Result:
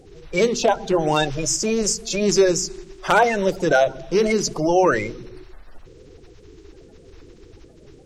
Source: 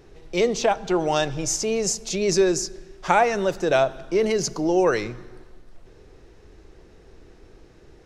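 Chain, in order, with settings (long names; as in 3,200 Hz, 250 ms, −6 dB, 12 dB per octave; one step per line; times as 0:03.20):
spectral magnitudes quantised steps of 30 dB
wave folding −10 dBFS
mains-hum notches 60/120/180/240 Hz
level +3.5 dB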